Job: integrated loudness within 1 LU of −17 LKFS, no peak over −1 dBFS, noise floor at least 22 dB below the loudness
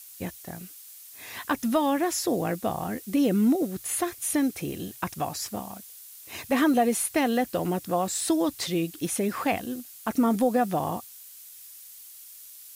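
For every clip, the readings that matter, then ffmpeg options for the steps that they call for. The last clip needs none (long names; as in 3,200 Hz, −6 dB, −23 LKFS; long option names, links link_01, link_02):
background noise floor −47 dBFS; target noise floor −49 dBFS; integrated loudness −27.0 LKFS; sample peak −13.0 dBFS; target loudness −17.0 LKFS
→ -af "afftdn=noise_reduction=6:noise_floor=-47"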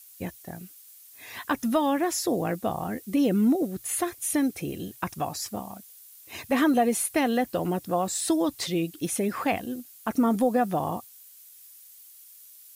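background noise floor −51 dBFS; integrated loudness −27.0 LKFS; sample peak −13.0 dBFS; target loudness −17.0 LKFS
→ -af "volume=10dB"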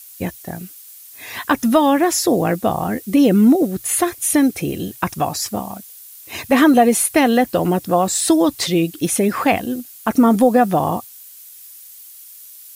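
integrated loudness −17.0 LKFS; sample peak −3.0 dBFS; background noise floor −41 dBFS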